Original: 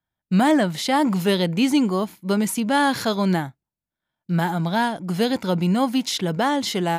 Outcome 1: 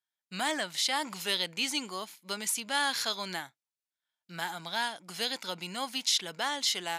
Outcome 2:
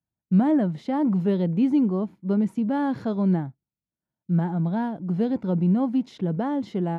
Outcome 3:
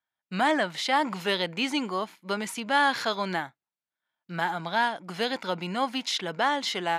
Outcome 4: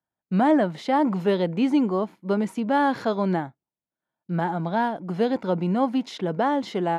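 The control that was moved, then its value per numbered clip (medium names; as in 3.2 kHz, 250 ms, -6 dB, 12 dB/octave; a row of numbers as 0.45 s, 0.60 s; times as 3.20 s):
band-pass filter, frequency: 5.7 kHz, 160 Hz, 1.9 kHz, 520 Hz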